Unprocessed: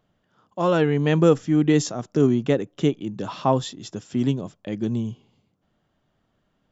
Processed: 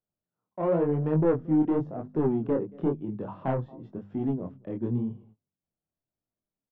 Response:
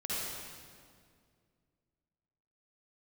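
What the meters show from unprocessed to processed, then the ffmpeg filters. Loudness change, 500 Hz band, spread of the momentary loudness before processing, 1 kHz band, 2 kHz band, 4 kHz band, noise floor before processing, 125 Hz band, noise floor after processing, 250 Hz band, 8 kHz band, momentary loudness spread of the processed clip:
−6.0 dB, −6.0 dB, 13 LU, −8.0 dB, −15.0 dB, below −25 dB, −71 dBFS, −6.5 dB, below −85 dBFS, −5.5 dB, can't be measured, 13 LU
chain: -filter_complex "[0:a]asplit=2[link_01][link_02];[link_02]adelay=227.4,volume=-26dB,highshelf=frequency=4000:gain=-5.12[link_03];[link_01][link_03]amix=inputs=2:normalize=0,acrossover=split=530|960[link_04][link_05][link_06];[link_06]acompressor=threshold=-44dB:ratio=6[link_07];[link_04][link_05][link_07]amix=inputs=3:normalize=0,aemphasis=mode=reproduction:type=cd,adynamicsmooth=sensitivity=1:basefreq=1700,asoftclip=type=tanh:threshold=-14.5dB,bandreject=frequency=50:width_type=h:width=6,bandreject=frequency=100:width_type=h:width=6,bandreject=frequency=150:width_type=h:width=6,bandreject=frequency=200:width_type=h:width=6,bandreject=frequency=250:width_type=h:width=6,agate=range=-20dB:threshold=-50dB:ratio=16:detection=peak,flanger=delay=19:depth=7:speed=0.94,highshelf=frequency=3500:gain=-12"

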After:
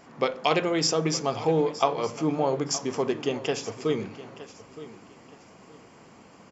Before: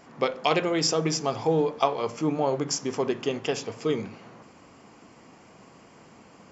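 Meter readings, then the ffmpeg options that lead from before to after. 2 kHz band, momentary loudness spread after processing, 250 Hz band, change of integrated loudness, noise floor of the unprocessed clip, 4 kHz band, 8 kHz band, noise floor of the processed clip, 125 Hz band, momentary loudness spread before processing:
0.0 dB, 20 LU, 0.0 dB, 0.0 dB, −53 dBFS, 0.0 dB, can't be measured, −52 dBFS, 0.0 dB, 6 LU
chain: -af "aecho=1:1:918|1836|2754:0.158|0.0412|0.0107"

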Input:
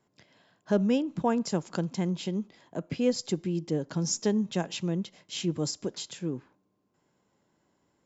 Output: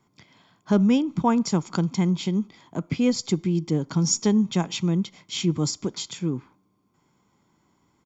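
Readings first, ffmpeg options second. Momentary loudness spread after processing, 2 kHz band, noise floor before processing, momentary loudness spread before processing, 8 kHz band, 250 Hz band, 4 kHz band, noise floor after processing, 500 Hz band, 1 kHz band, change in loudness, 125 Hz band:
9 LU, +4.5 dB, −74 dBFS, 9 LU, can't be measured, +7.0 dB, +5.5 dB, −68 dBFS, +1.5 dB, +6.0 dB, +6.0 dB, +8.0 dB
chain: -af "aecho=1:1:0.9:0.53,volume=5dB"

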